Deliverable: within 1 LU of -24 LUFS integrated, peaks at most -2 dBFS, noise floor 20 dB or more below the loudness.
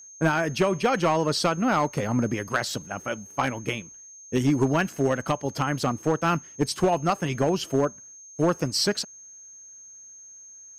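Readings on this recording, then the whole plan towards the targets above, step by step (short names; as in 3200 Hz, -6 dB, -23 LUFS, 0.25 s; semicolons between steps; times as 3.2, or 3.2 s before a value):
clipped 0.6%; flat tops at -14.5 dBFS; steady tone 6400 Hz; tone level -44 dBFS; loudness -25.5 LUFS; peak -14.5 dBFS; loudness target -24.0 LUFS
-> clip repair -14.5 dBFS; notch 6400 Hz, Q 30; gain +1.5 dB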